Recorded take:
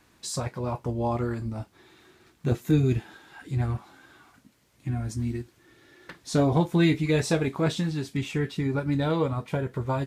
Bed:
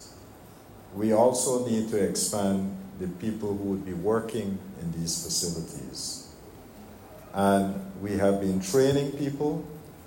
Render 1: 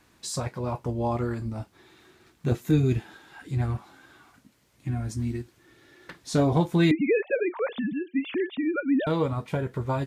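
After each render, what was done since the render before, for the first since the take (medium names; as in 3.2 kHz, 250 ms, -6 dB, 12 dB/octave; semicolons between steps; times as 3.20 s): 6.91–9.07 s: formants replaced by sine waves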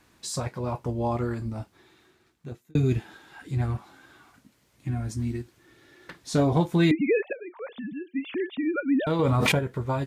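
1.55–2.75 s: fade out; 7.33–8.69 s: fade in linear, from -16.5 dB; 9.19–9.59 s: level flattener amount 100%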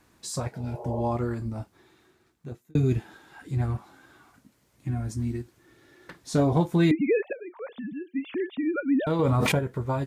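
0.55–0.98 s: spectral replace 350–1300 Hz both; peaking EQ 3.1 kHz -4 dB 1.8 oct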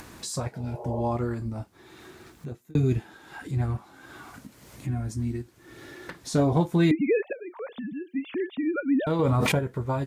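upward compressor, threshold -32 dBFS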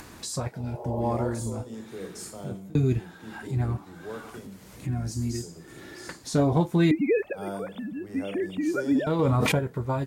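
add bed -13 dB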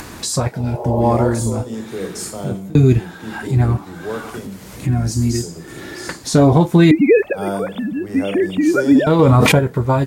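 trim +12 dB; peak limiter -2 dBFS, peak gain reduction 3 dB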